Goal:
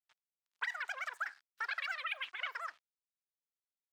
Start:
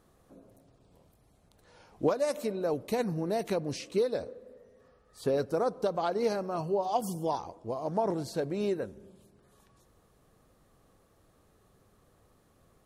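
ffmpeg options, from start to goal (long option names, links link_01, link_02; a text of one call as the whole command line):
ffmpeg -i in.wav -filter_complex "[0:a]aeval=exprs='val(0)*gte(abs(val(0)),0.00398)':channel_layout=same,acrossover=split=280 2200:gain=0.1 1 0.0794[link_01][link_02][link_03];[link_01][link_02][link_03]amix=inputs=3:normalize=0,asetrate=144648,aresample=44100,volume=-8dB" out.wav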